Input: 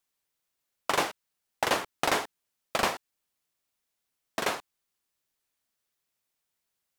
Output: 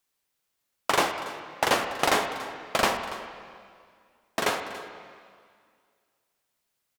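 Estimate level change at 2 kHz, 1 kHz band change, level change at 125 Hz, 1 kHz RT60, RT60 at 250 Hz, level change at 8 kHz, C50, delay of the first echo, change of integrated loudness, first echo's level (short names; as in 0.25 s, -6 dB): +4.0 dB, +4.0 dB, +4.0 dB, 2.1 s, 2.1 s, +3.0 dB, 7.0 dB, 0.284 s, +3.0 dB, -17.0 dB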